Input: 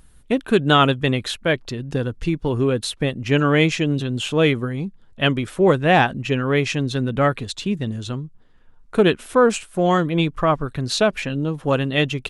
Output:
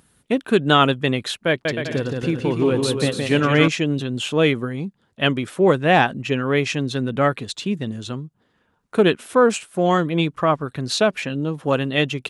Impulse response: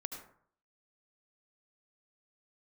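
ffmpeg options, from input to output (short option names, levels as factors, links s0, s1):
-filter_complex "[0:a]highpass=130,asettb=1/sr,asplit=3[s0][s1][s2];[s0]atrim=end=1.484[s3];[s1]atrim=start=1.48:end=3.68,asetpts=PTS-STARTPTS,afade=t=in:d=0.004:c=qsin,afade=t=out:st=2.196:d=0.004:c=qsin,aecho=1:1:170|289|372.3|430.6|471.4:0.631|0.398|0.251|0.158|0.1,atrim=end_sample=97020[s4];[s2]atrim=start=3.676[s5];[s3][s4]acrossfade=d=0.004:c1=hsin:c2=qsin[s6];[s6][s5]acrossfade=d=0.004:c1=qsin:c2=hsin"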